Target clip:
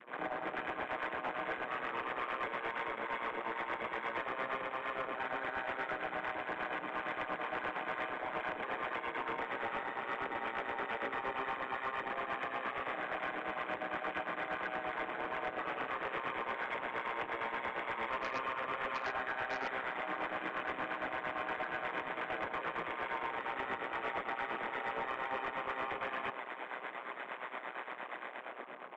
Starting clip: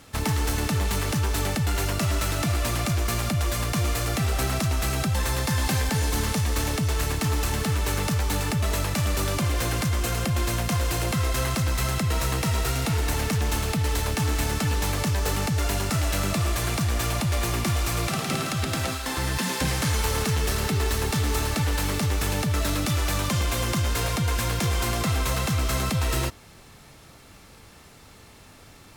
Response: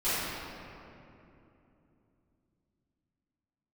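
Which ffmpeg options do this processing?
-filter_complex "[0:a]acrossover=split=1200[link_01][link_02];[link_01]aeval=exprs='0.141*(cos(1*acos(clip(val(0)/0.141,-1,1)))-cos(1*PI/2))+0.0251*(cos(6*acos(clip(val(0)/0.141,-1,1)))-cos(6*PI/2))':channel_layout=same[link_03];[link_02]dynaudnorm=framelen=100:gausssize=13:maxgain=7dB[link_04];[link_03][link_04]amix=inputs=2:normalize=0,aeval=exprs='val(0)*sin(2*PI*62*n/s)':channel_layout=same,acontrast=69,alimiter=level_in=0.5dB:limit=-24dB:level=0:latency=1:release=29,volume=-0.5dB,highpass=frequency=520:width_type=q:width=0.5412,highpass=frequency=520:width_type=q:width=1.307,lowpass=frequency=2600:width_type=q:width=0.5176,lowpass=frequency=2600:width_type=q:width=0.7071,lowpass=frequency=2600:width_type=q:width=1.932,afreqshift=-190,adynamicequalizer=threshold=0.00224:dfrequency=730:dqfactor=0.91:tfrequency=730:tqfactor=0.91:attack=5:release=100:ratio=0.375:range=2:mode=boostabove:tftype=bell,tremolo=f=8.6:d=0.69,aresample=16000,asoftclip=type=hard:threshold=-36.5dB,aresample=44100,asplit=2[link_05][link_06];[link_06]adelay=991.3,volume=-14dB,highshelf=frequency=4000:gain=-22.3[link_07];[link_05][link_07]amix=inputs=2:normalize=0,afwtdn=0.00224,volume=4.5dB"

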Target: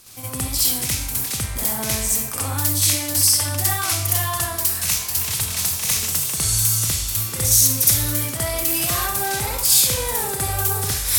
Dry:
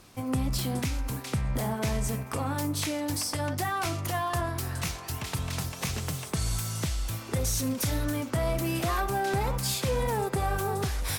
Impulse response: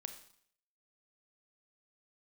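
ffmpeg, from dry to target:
-filter_complex "[0:a]crystalizer=i=6.5:c=0,asplit=2[link_01][link_02];[link_02]equalizer=frequency=99:width_type=o:width=0.68:gain=11[link_03];[1:a]atrim=start_sample=2205,lowshelf=frequency=370:gain=-3.5,adelay=64[link_04];[link_03][link_04]afir=irnorm=-1:irlink=0,volume=9dB[link_05];[link_01][link_05]amix=inputs=2:normalize=0,volume=-6.5dB"

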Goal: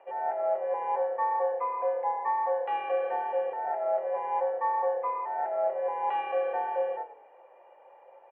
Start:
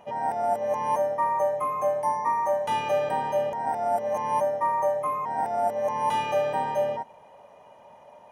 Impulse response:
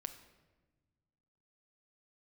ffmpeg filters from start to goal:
-filter_complex "[1:a]atrim=start_sample=2205,atrim=end_sample=3528,asetrate=57330,aresample=44100[link_01];[0:a][link_01]afir=irnorm=-1:irlink=0,highpass=frequency=490:width_type=q:width=0.5412,highpass=frequency=490:width_type=q:width=1.307,lowpass=frequency=2600:width_type=q:width=0.5176,lowpass=frequency=2600:width_type=q:width=0.7071,lowpass=frequency=2600:width_type=q:width=1.932,afreqshift=-54,asplit=4[link_02][link_03][link_04][link_05];[link_03]adelay=102,afreqshift=-33,volume=-16dB[link_06];[link_04]adelay=204,afreqshift=-66,volume=-25.4dB[link_07];[link_05]adelay=306,afreqshift=-99,volume=-34.7dB[link_08];[link_02][link_06][link_07][link_08]amix=inputs=4:normalize=0,volume=2dB"

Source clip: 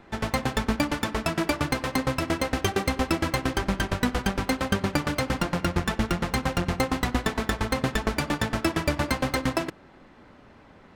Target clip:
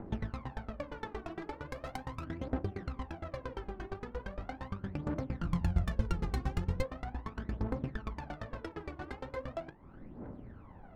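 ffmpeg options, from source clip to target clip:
ffmpeg -i in.wav -filter_complex "[0:a]asplit=2[link_01][link_02];[link_02]aeval=exprs='(mod(3.76*val(0)+1,2)-1)/3.76':channel_layout=same,volume=-6.5dB[link_03];[link_01][link_03]amix=inputs=2:normalize=0,flanger=delay=9.2:depth=9.9:regen=-57:speed=1.5:shape=sinusoidal,acompressor=threshold=-38dB:ratio=10,asettb=1/sr,asplit=3[link_04][link_05][link_06];[link_04]atrim=end=5.434[link_07];[link_05]atrim=start=5.43:end=6.83,asetpts=PTS-STARTPTS,afade=type=in:duration=0.004:curve=qsin,afade=type=out:start_time=1.396:duration=0.004:curve=qsin,bass=frequency=250:gain=13,treble=frequency=4000:gain=14[link_08];[link_06]atrim=start=6.826[link_09];[link_07][link_08]acrossfade=duration=0.004:curve1=hsin:curve2=qsin[link_10];[link_10][link_09]acrossfade=duration=0.004:curve1=qsin:curve2=hsin,adynamicsmooth=sensitivity=4.5:basefreq=850,aphaser=in_gain=1:out_gain=1:delay=2.8:decay=0.69:speed=0.39:type=triangular,asplit=3[link_11][link_12][link_13];[link_11]afade=type=out:start_time=1.7:duration=0.02[link_14];[link_12]equalizer=frequency=14000:width=0.37:gain=13.5,afade=type=in:start_time=1.7:duration=0.02,afade=type=out:start_time=2.23:duration=0.02[link_15];[link_13]afade=type=in:start_time=2.23:duration=0.02[link_16];[link_14][link_15][link_16]amix=inputs=3:normalize=0" out.wav

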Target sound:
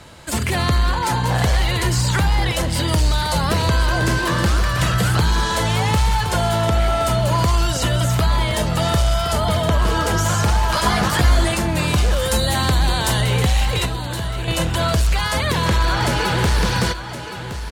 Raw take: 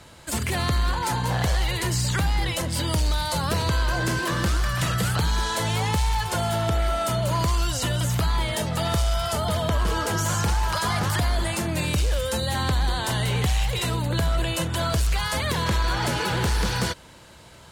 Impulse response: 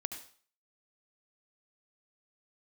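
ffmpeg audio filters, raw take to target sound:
-filter_complex "[0:a]asettb=1/sr,asplit=3[link_01][link_02][link_03];[link_01]atrim=end=10.684[link_04];[link_02]atrim=start=10.68:end=11.55,asetpts=PTS-STARTPTS,afade=type=in:duration=0.004:curve=qsin,afade=type=out:start_time=0.866:duration=0.004:curve=qsin,asplit=2[link_05][link_06];[link_06]adelay=15,volume=-2dB[link_07];[link_05][link_07]amix=inputs=2:normalize=0,atrim=end_sample=38367[link_08];[link_03]atrim=start=11.546[link_09];[link_04][link_08]acrossfade=duration=0.004:curve1=hsin:curve2=qsin[link_10];[link_10][link_09]acrossfade=duration=0.004:curve1=qsin:curve2=hsin,asettb=1/sr,asplit=3[link_11][link_12][link_13];[link_11]atrim=end=12.224[link_14];[link_12]atrim=start=12.22:end=13.21,asetpts=PTS-STARTPTS,afade=type=in:duration=0.004:curve=qsin,afade=type=out:start_time=0.986:duration=0.004:curve=qsin,highshelf=frequency=5600:gain=7.5[link_15];[link_13]atrim=start=13.206[link_16];[link_14][link_15]acrossfade=duration=0.004:curve1=hsin:curve2=qsin[link_17];[link_17][link_16]acrossfade=duration=0.004:curve1=qsin:curve2=hsin,asettb=1/sr,asplit=3[link_18][link_19][link_20];[link_18]atrim=end=13.854[link_21];[link_19]atrim=start=13.85:end=14.48,asetpts=PTS-STARTPTS,afade=type=in:duration=0.004:curve=qsin,afade=type=out:start_time=0.626:duration=0.004:curve=qsin,acrossover=split=1200|7100[link_22][link_23][link_24];[link_22]acompressor=threshold=-31dB:ratio=4[link_25];[link_23]acompressor=threshold=-40dB:ratio=4[link_26];[link_24]acompressor=threshold=-50dB:ratio=4[link_27];[link_25][link_26][link_27]amix=inputs=3:normalize=0[link_28];[link_20]atrim=start=14.476[link_29];[link_21][link_28]acrossfade=duration=0.004:curve1=hsin:curve2=qsin[link_30];[link_30][link_29]acrossfade=duration=0.004:curve1=qsin:curve2=hsin,aecho=1:1:1068:0.282,asplit=2[link_31][link_32];[1:a]atrim=start_sample=2205,atrim=end_sample=3087,highshelf=frequency=9000:gain=-12[link_33];[link_32][link_33]afir=irnorm=-1:irlink=0,volume=0.5dB[link_34];[link_31][link_34]amix=inputs=2:normalize=0"

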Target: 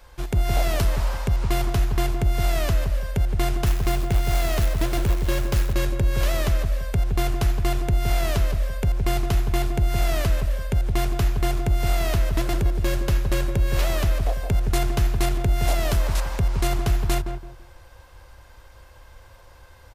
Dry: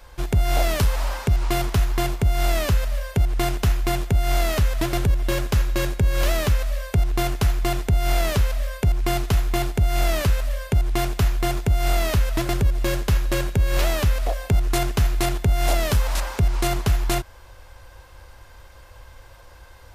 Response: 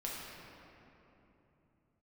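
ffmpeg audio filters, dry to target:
-filter_complex "[0:a]asettb=1/sr,asplit=3[link_01][link_02][link_03];[link_01]atrim=end=3.664[link_04];[link_02]atrim=start=3.66:end=5.73,asetpts=PTS-STARTPTS,afade=type=in:duration=0.004:curve=qsin,afade=type=out:start_time=2.066:duration=0.004:curve=qsin,acrusher=bits=4:mode=log:mix=0:aa=0.000001[link_05];[link_03]atrim=start=5.726[link_06];[link_04][link_05]acrossfade=duration=0.004:curve1=hsin:curve2=qsin[link_07];[link_07][link_06]acrossfade=duration=0.004:curve1=qsin:curve2=hsin,asplit=2[link_08][link_09];[link_09]adelay=167,lowpass=frequency=900:poles=1,volume=-5dB,asplit=2[link_10][link_11];[link_11]adelay=167,lowpass=frequency=900:poles=1,volume=0.32,asplit=2[link_12][link_13];[link_13]adelay=167,lowpass=frequency=900:poles=1,volume=0.32,asplit=2[link_14][link_15];[link_15]adelay=167,lowpass=frequency=900:poles=1,volume=0.32[link_16];[link_10][link_12][link_14][link_16]amix=inputs=4:normalize=0[link_17];[link_08][link_17]amix=inputs=2:normalize=0,volume=-3dB"

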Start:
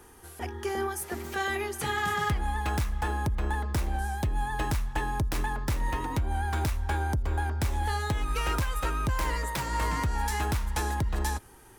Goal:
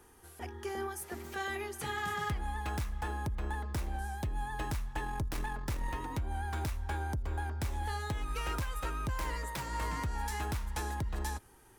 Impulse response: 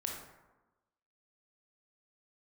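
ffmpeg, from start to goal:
-filter_complex "[0:a]asettb=1/sr,asplit=3[link_01][link_02][link_03];[link_01]atrim=end=5.044[link_04];[link_02]atrim=start=5.04:end=5.93,asetpts=PTS-STARTPTS,afade=type=in:duration=0.004:curve=qsin,afade=type=out:start_time=0.886:duration=0.004:curve=qsin,aeval=exprs='0.0944*(cos(1*acos(clip(val(0)/0.0944,-1,1)))-cos(1*PI/2))+0.0075*(cos(4*acos(clip(val(0)/0.0944,-1,1)))-cos(4*PI/2))':channel_layout=same[link_05];[link_03]atrim=start=5.926[link_06];[link_04][link_05]acrossfade=duration=0.004:curve1=hsin:curve2=qsin[link_07];[link_07][link_06]acrossfade=duration=0.004:curve1=qsin:curve2=hsin,volume=-7dB"

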